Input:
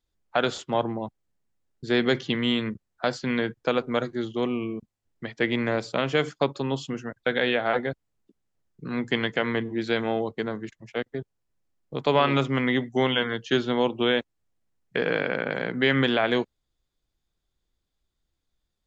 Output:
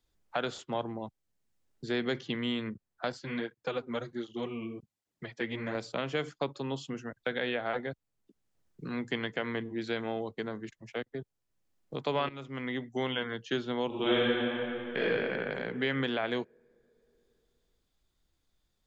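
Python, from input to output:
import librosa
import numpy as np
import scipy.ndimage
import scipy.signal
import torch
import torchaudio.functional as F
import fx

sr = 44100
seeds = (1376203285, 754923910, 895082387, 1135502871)

y = fx.flanger_cancel(x, sr, hz=1.3, depth_ms=7.0, at=(3.12, 5.75))
y = fx.reverb_throw(y, sr, start_s=13.87, length_s=1.14, rt60_s=2.4, drr_db=-8.5)
y = fx.edit(y, sr, fx.fade_in_from(start_s=12.29, length_s=0.83, floor_db=-16.5), tone=tone)
y = fx.band_squash(y, sr, depth_pct=40)
y = F.gain(torch.from_numpy(y), -8.5).numpy()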